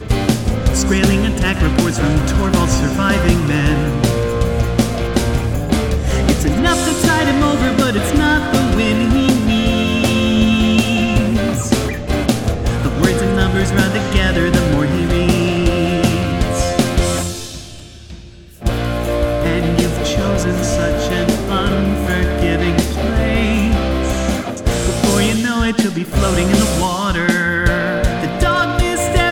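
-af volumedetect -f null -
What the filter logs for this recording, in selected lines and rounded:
mean_volume: -15.0 dB
max_volume: -1.7 dB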